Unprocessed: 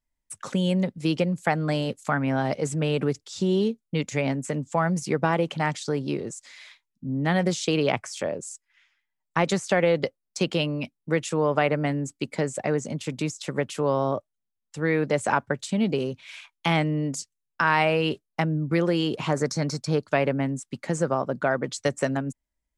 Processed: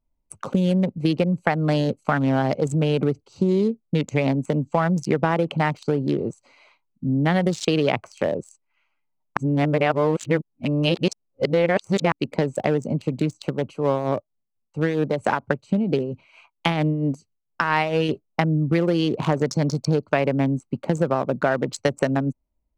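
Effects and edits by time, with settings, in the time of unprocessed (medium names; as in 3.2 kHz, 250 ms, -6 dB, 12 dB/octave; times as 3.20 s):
9.37–12.12 s: reverse
13.46–18.09 s: tremolo 4.4 Hz, depth 57%
whole clip: local Wiener filter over 25 samples; compression 2.5:1, threshold -27 dBFS; trim +8.5 dB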